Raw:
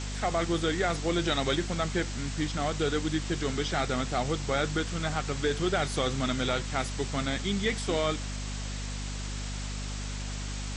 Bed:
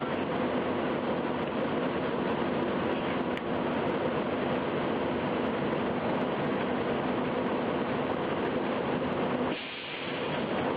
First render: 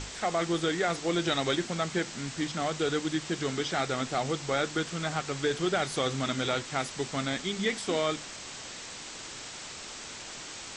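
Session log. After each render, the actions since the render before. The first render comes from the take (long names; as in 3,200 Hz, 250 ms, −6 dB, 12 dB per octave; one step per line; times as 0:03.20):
mains-hum notches 50/100/150/200/250 Hz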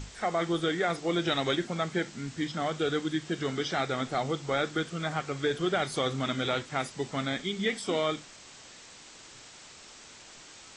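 noise reduction from a noise print 8 dB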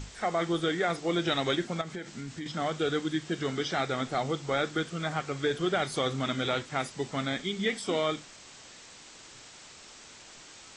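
0:01.81–0:02.46: downward compressor, threshold −34 dBFS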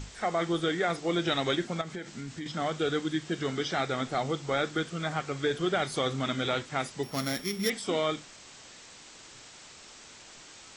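0:07.03–0:07.70: samples sorted by size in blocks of 8 samples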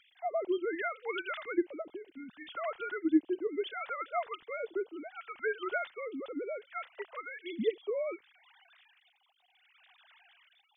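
three sine waves on the formant tracks
all-pass phaser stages 2, 0.67 Hz, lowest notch 260–1,700 Hz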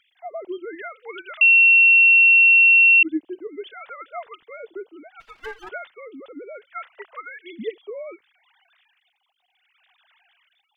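0:01.41–0:03.03: beep over 2,720 Hz −9.5 dBFS
0:05.20–0:05.69: lower of the sound and its delayed copy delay 6.3 ms
0:06.54–0:07.82: dynamic equaliser 1,400 Hz, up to +7 dB, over −51 dBFS, Q 0.84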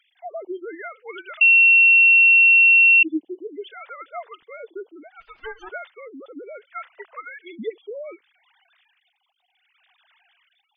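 gate on every frequency bin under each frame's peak −20 dB strong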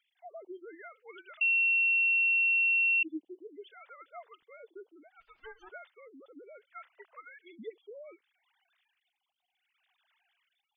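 level −13.5 dB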